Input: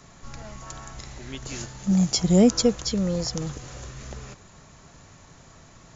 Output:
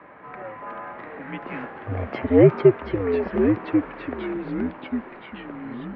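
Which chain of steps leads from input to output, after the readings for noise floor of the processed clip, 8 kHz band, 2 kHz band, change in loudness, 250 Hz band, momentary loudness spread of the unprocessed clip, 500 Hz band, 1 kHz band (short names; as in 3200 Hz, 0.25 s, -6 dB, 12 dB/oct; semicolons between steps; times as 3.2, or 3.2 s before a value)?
-42 dBFS, n/a, +8.5 dB, +0.5 dB, +1.0 dB, 22 LU, +7.5 dB, +6.5 dB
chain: echoes that change speed 0.588 s, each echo -3 st, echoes 3, each echo -6 dB; mistuned SSB -94 Hz 320–2300 Hz; gain +8.5 dB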